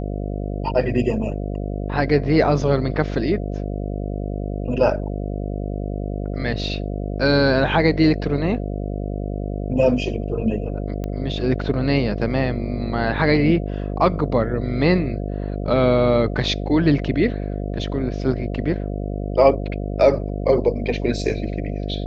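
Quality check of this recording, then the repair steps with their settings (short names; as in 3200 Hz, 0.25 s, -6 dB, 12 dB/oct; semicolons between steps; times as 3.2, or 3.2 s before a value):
buzz 50 Hz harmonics 14 -26 dBFS
11.04 pop -16 dBFS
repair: de-click; de-hum 50 Hz, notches 14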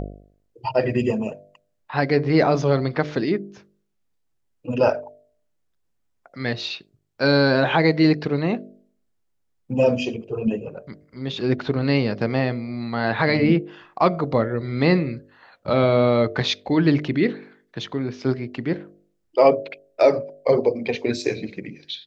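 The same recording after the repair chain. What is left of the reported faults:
none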